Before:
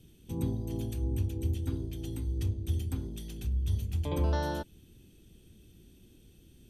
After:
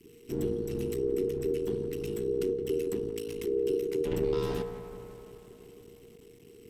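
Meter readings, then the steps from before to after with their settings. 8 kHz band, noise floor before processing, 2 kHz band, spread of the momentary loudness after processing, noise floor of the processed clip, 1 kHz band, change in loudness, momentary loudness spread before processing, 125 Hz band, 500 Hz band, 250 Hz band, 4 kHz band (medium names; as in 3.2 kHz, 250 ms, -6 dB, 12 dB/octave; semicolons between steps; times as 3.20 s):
+1.5 dB, -59 dBFS, -1.0 dB, 17 LU, -54 dBFS, -5.0 dB, +2.0 dB, 8 LU, -9.0 dB, +13.0 dB, +3.0 dB, +0.5 dB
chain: compression 2:1, threshold -32 dBFS, peak gain reduction 5 dB; on a send: band-passed feedback delay 171 ms, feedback 79%, band-pass 660 Hz, level -8 dB; on the sum: half-wave rectifier; frequency shift -470 Hz; trim +6.5 dB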